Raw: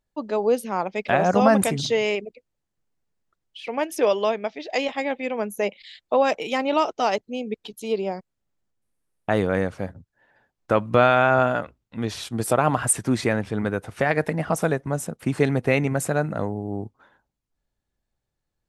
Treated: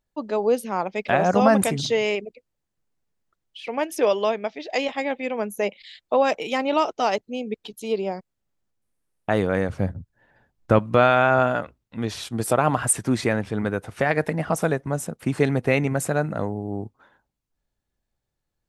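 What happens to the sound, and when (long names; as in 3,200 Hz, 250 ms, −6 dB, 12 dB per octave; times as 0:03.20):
0:09.69–0:10.79: low-shelf EQ 220 Hz +12 dB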